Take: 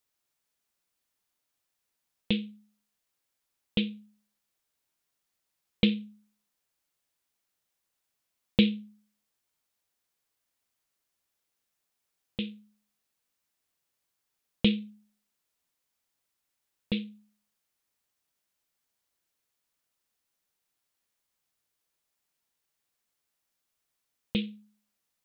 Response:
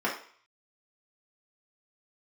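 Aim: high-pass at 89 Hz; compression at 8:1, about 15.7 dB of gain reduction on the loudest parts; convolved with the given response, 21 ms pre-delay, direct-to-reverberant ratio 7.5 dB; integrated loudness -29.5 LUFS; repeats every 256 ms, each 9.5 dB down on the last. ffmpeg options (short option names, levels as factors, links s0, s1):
-filter_complex "[0:a]highpass=89,acompressor=threshold=0.0178:ratio=8,aecho=1:1:256|512|768|1024:0.335|0.111|0.0365|0.012,asplit=2[s0][s1];[1:a]atrim=start_sample=2205,adelay=21[s2];[s1][s2]afir=irnorm=-1:irlink=0,volume=0.119[s3];[s0][s3]amix=inputs=2:normalize=0,volume=4.73"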